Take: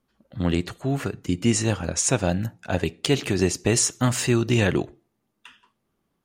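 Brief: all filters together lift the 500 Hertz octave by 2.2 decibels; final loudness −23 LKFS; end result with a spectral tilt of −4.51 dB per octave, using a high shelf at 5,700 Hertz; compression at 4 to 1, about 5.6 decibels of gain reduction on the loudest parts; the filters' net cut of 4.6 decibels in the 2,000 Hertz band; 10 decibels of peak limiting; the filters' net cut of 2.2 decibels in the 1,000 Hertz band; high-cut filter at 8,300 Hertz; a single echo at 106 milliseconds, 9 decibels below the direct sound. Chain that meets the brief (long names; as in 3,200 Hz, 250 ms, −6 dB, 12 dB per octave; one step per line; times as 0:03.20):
low-pass filter 8,300 Hz
parametric band 500 Hz +4 dB
parametric band 1,000 Hz −4 dB
parametric band 2,000 Hz −6 dB
high-shelf EQ 5,700 Hz +4 dB
downward compressor 4 to 1, threshold −21 dBFS
brickwall limiter −17.5 dBFS
single-tap delay 106 ms −9 dB
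level +6 dB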